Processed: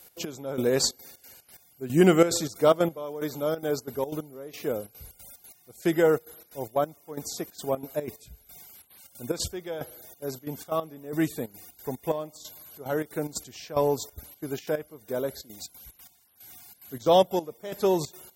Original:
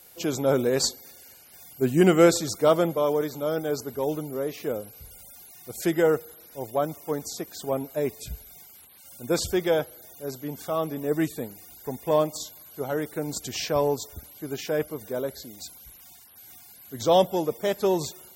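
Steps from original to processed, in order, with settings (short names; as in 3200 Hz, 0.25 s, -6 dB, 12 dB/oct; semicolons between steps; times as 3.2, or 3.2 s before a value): step gate "x.x....xxxx.xx.x" 182 bpm -12 dB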